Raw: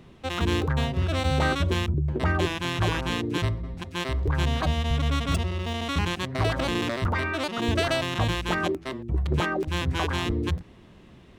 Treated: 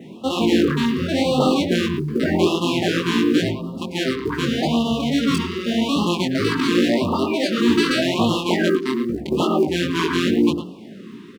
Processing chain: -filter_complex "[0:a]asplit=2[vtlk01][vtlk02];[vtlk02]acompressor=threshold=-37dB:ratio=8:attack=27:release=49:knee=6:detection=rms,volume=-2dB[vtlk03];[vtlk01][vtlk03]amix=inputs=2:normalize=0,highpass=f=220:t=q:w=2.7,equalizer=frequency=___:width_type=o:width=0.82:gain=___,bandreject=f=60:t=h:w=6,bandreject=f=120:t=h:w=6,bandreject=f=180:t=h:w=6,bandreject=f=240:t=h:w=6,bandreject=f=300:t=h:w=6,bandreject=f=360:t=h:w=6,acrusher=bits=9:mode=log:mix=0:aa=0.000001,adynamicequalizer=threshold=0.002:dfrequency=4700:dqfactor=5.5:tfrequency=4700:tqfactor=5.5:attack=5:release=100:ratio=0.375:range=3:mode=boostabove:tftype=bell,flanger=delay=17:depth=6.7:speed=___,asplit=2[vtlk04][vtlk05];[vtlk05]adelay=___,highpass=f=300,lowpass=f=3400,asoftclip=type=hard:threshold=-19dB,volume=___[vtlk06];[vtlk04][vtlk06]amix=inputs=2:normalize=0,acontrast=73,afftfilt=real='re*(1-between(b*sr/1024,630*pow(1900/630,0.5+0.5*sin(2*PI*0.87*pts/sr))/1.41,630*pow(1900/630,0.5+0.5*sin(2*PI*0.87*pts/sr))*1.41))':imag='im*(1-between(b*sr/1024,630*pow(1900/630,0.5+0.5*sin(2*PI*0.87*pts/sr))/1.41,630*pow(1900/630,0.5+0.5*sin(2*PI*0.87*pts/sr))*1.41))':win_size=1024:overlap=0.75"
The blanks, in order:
380, 2, 2.3, 110, -8dB